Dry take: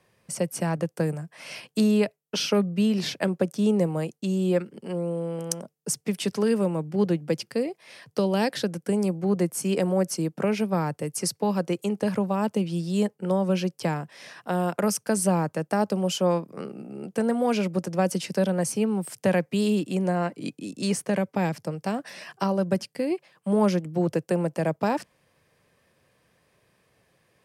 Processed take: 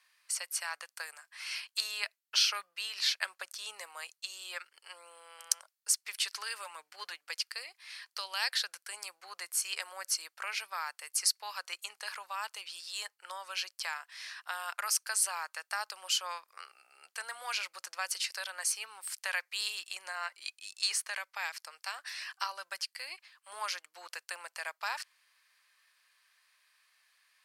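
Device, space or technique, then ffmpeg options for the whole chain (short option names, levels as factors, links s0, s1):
headphones lying on a table: -filter_complex "[0:a]asettb=1/sr,asplit=3[s0][s1][s2];[s0]atrim=end=6.624[s3];[s1]atrim=start=6.62:end=7.13,asetpts=PTS-STARTPTS,afade=t=in:d=0.004:c=qsin,afade=t=out:st=0.506:d=0.004:c=qsin,aecho=1:1:6.8:0.49,atrim=end_sample=22491[s4];[s2]atrim=start=7.126[s5];[s3][s4]acrossfade=d=0.004:c1=hsin:c2=qsin[s6];[s6][s5]acrossfade=d=0.004:c1=qsin:c2=hsin,highpass=f=1200:w=0.5412,highpass=f=1200:w=1.3066,equalizer=f=4300:t=o:w=0.24:g=7"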